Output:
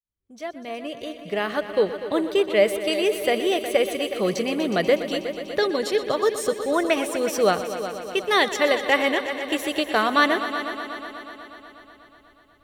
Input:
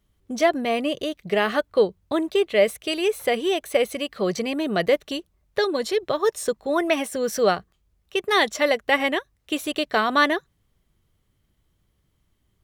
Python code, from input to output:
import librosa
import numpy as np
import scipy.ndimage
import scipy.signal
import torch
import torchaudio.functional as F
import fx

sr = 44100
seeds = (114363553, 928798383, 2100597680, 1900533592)

y = fx.fade_in_head(x, sr, length_s=2.3)
y = fx.echo_heads(y, sr, ms=122, heads='all three', feedback_pct=64, wet_db=-15)